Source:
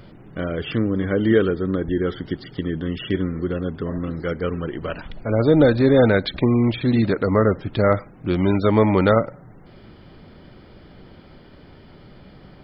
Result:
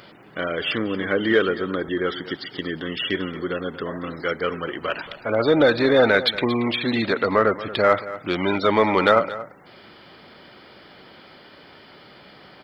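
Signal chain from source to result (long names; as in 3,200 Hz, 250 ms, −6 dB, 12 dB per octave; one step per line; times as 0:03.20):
high-pass filter 1,100 Hz 6 dB per octave
in parallel at −7 dB: soft clipping −23 dBFS, distortion −9 dB
on the sum: single-tap delay 230 ms −15.5 dB
level +5 dB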